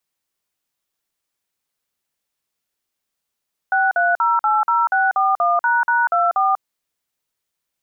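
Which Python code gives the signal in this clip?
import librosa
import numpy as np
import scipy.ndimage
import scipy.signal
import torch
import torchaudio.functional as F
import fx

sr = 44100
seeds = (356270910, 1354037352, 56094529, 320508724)

y = fx.dtmf(sr, digits='63080641##24', tone_ms=192, gap_ms=48, level_db=-16.5)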